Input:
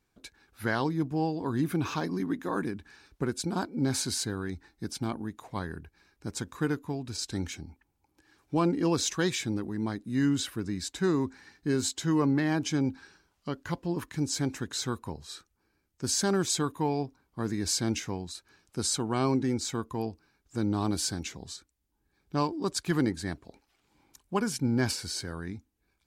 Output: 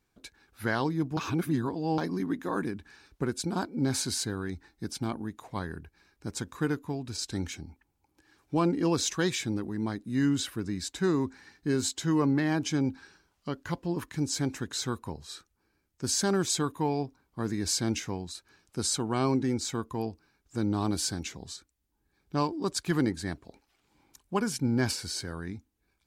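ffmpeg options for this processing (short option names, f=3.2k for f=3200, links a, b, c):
-filter_complex "[0:a]asplit=3[a][b][c];[a]atrim=end=1.172[d];[b]atrim=start=1.168:end=1.982,asetpts=PTS-STARTPTS,areverse[e];[c]atrim=start=1.978[f];[d][e]acrossfade=d=0.004:c1=hsin:c2=hsin[g];[g][f]acrossfade=d=0.004:c1=hsin:c2=hsin"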